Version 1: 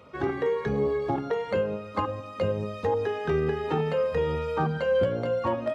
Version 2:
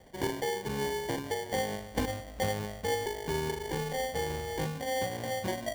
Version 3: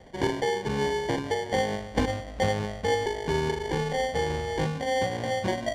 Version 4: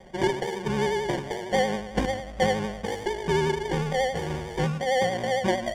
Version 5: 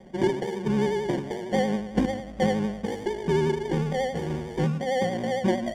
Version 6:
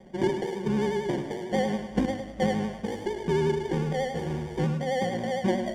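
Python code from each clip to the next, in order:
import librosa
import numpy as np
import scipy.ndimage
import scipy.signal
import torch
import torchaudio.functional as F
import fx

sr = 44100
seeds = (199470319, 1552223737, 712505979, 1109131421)

y1 = scipy.signal.sosfilt(scipy.signal.butter(12, 4600.0, 'lowpass', fs=sr, output='sos'), x)
y1 = fx.rider(y1, sr, range_db=10, speed_s=0.5)
y1 = fx.sample_hold(y1, sr, seeds[0], rate_hz=1300.0, jitter_pct=0)
y1 = y1 * librosa.db_to_amplitude(-6.5)
y2 = fx.air_absorb(y1, sr, metres=72.0)
y2 = y2 * librosa.db_to_amplitude(6.0)
y3 = fx.notch(y2, sr, hz=4100.0, q=7.1)
y3 = y3 + 0.65 * np.pad(y3, (int(5.4 * sr / 1000.0), 0))[:len(y3)]
y3 = fx.vibrato(y3, sr, rate_hz=11.0, depth_cents=59.0)
y4 = fx.peak_eq(y3, sr, hz=240.0, db=11.5, octaves=1.5)
y4 = y4 * librosa.db_to_amplitude(-5.0)
y5 = fx.echo_feedback(y4, sr, ms=104, feedback_pct=40, wet_db=-10)
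y5 = y5 * librosa.db_to_amplitude(-2.0)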